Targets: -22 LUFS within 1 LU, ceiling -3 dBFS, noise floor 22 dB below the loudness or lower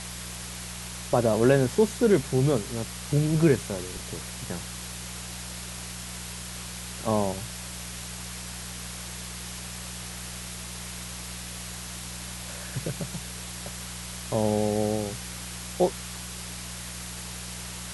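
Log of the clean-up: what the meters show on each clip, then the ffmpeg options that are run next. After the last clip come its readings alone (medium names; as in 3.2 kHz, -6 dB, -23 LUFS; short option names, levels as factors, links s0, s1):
hum 60 Hz; highest harmonic 180 Hz; hum level -39 dBFS; noise floor -38 dBFS; noise floor target -52 dBFS; loudness -29.5 LUFS; peak level -8.5 dBFS; loudness target -22.0 LUFS
-> -af "bandreject=f=60:t=h:w=4,bandreject=f=120:t=h:w=4,bandreject=f=180:t=h:w=4"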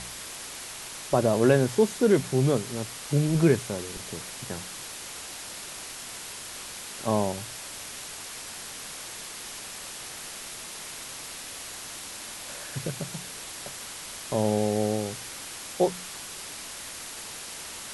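hum not found; noise floor -40 dBFS; noise floor target -52 dBFS
-> -af "afftdn=nr=12:nf=-40"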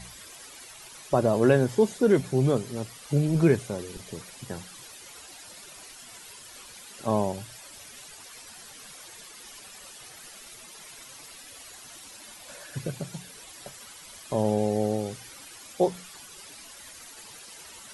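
noise floor -47 dBFS; noise floor target -49 dBFS
-> -af "afftdn=nr=6:nf=-47"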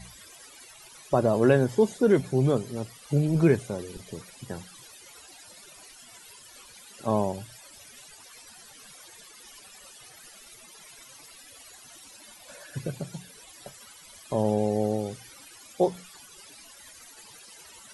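noise floor -50 dBFS; loudness -26.5 LUFS; peak level -8.5 dBFS; loudness target -22.0 LUFS
-> -af "volume=1.68"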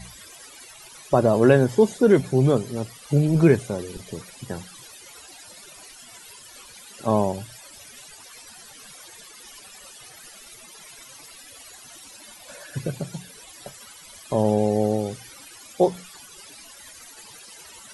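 loudness -22.0 LUFS; peak level -4.0 dBFS; noise floor -46 dBFS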